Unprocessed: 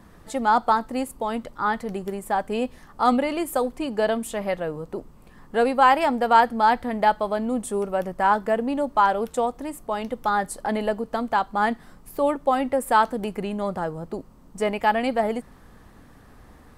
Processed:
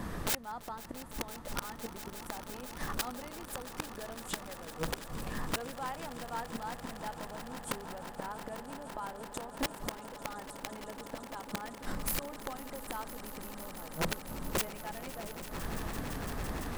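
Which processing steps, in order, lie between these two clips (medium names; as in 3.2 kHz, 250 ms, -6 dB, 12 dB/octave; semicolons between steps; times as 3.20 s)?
inverted gate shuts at -22 dBFS, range -34 dB; integer overflow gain 35 dB; echo with a slow build-up 169 ms, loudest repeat 8, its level -15.5 dB; trim +10.5 dB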